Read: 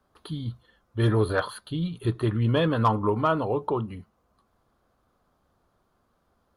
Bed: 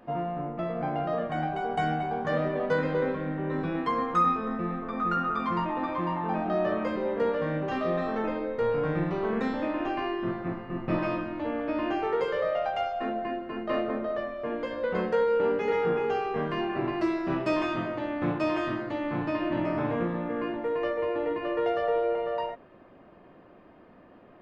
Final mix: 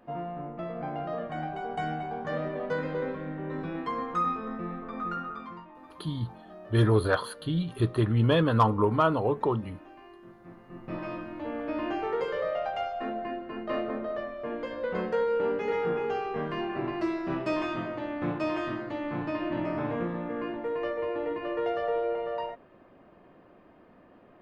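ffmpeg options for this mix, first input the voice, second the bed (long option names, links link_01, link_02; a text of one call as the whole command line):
ffmpeg -i stem1.wav -i stem2.wav -filter_complex "[0:a]adelay=5750,volume=0dB[link_01];[1:a]volume=13dB,afade=type=out:start_time=4.98:duration=0.67:silence=0.16788,afade=type=in:start_time=10.37:duration=1.36:silence=0.133352[link_02];[link_01][link_02]amix=inputs=2:normalize=0" out.wav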